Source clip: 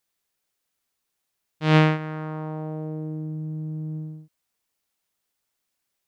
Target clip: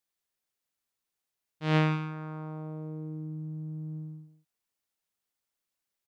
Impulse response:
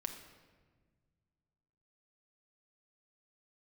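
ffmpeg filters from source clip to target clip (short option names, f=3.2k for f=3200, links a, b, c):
-af "aecho=1:1:168:0.266,volume=-8dB"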